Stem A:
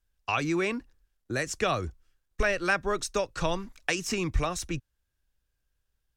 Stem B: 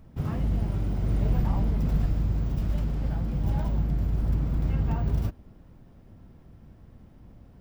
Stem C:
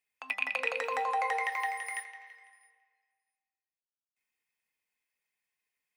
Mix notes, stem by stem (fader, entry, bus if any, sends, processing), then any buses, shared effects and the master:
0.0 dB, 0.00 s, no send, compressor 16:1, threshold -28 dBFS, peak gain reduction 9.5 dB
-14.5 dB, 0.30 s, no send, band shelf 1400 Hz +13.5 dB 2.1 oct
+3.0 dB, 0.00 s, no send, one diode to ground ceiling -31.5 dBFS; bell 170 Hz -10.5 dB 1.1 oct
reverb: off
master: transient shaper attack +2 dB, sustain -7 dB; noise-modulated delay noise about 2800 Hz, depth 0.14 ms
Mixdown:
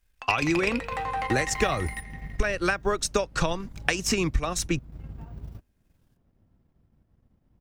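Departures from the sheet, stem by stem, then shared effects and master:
stem A 0.0 dB -> +7.0 dB; stem B: missing band shelf 1400 Hz +13.5 dB 2.1 oct; master: missing noise-modulated delay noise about 2800 Hz, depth 0.14 ms

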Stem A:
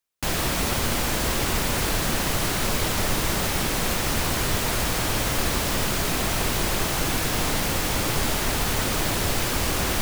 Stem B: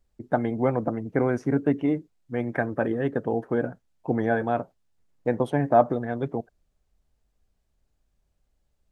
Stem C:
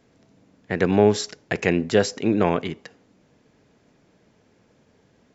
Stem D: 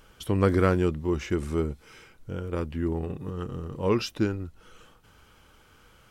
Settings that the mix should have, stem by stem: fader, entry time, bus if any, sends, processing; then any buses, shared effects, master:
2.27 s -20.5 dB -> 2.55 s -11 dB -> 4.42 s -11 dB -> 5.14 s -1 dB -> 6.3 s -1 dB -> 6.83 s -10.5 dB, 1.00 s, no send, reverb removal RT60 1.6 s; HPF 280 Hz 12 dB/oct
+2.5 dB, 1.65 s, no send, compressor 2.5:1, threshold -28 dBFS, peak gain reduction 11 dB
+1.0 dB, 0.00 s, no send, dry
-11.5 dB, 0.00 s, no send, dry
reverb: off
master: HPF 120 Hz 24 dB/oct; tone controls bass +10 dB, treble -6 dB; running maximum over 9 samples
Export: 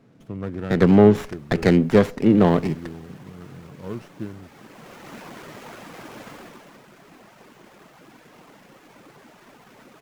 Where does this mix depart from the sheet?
stem A -20.5 dB -> -28.0 dB; stem B: muted

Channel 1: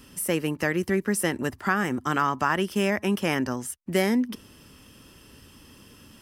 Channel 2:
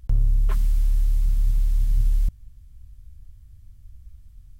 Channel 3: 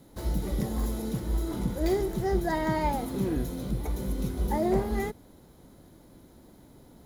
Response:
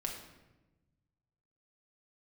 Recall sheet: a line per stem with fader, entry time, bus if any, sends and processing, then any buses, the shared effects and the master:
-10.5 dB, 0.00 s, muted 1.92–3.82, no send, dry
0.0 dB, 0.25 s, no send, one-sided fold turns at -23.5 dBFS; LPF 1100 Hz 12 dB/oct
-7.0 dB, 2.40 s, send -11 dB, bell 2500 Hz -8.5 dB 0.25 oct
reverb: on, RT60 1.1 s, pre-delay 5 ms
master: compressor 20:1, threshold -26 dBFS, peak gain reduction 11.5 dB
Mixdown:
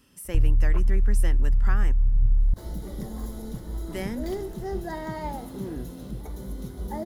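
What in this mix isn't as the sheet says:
stem 2: missing one-sided fold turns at -23.5 dBFS; master: missing compressor 20:1, threshold -26 dBFS, peak gain reduction 11.5 dB

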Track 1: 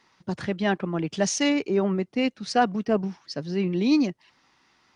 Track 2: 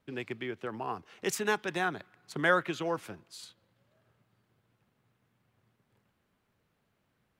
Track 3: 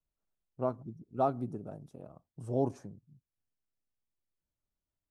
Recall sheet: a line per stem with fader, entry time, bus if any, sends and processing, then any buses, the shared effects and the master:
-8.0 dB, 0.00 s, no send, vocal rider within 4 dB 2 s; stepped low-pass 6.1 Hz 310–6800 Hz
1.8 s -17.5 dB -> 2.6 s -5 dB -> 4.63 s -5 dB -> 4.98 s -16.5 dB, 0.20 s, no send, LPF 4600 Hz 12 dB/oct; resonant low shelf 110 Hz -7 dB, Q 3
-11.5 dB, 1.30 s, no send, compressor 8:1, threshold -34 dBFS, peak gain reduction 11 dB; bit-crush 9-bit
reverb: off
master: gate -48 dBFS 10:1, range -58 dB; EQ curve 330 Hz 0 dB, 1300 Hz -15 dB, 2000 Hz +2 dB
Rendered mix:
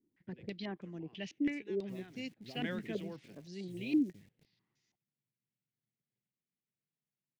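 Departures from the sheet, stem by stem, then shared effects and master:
stem 1 -8.0 dB -> -18.0 dB; stem 2 -17.5 dB -> -24.5 dB; master: missing gate -48 dBFS 10:1, range -58 dB

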